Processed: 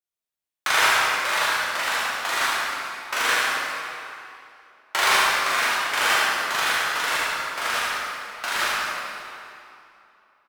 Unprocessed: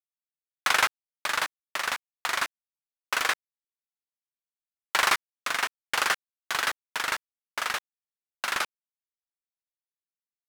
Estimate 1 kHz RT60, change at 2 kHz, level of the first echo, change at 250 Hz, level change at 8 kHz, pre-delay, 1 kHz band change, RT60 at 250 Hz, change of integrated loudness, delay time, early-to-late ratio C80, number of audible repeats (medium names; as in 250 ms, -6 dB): 2.8 s, +7.0 dB, -3.5 dB, +7.0 dB, +6.0 dB, 8 ms, +7.0 dB, 2.7 s, +6.0 dB, 72 ms, -2.5 dB, 1